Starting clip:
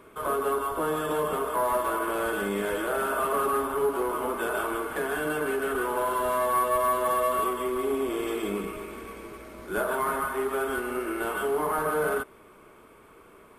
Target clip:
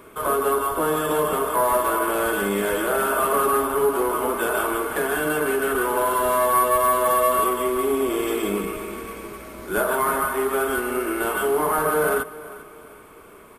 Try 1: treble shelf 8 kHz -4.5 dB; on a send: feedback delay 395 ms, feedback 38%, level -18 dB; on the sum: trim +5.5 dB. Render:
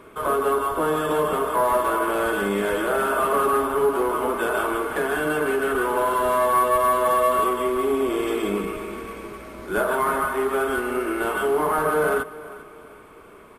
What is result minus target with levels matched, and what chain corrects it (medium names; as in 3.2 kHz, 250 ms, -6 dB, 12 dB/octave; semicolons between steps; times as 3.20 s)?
8 kHz band -6.5 dB
treble shelf 8 kHz +7 dB; on a send: feedback delay 395 ms, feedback 38%, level -18 dB; on the sum: trim +5.5 dB